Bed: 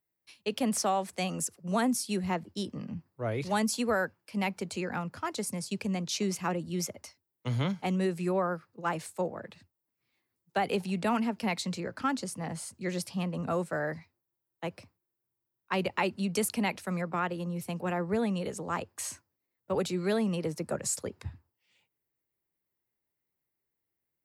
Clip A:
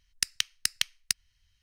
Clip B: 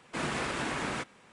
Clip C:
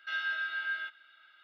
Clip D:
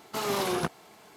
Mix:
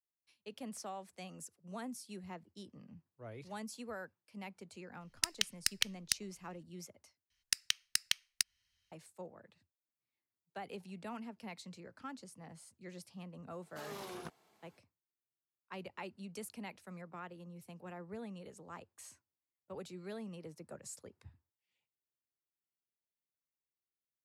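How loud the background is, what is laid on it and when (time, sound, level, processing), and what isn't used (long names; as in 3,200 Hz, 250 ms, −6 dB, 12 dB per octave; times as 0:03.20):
bed −16.5 dB
0:05.01: mix in A −5 dB
0:07.30: overwrite with A −5 dB + high-pass filter 250 Hz 6 dB per octave
0:13.62: mix in D −17.5 dB
not used: B, C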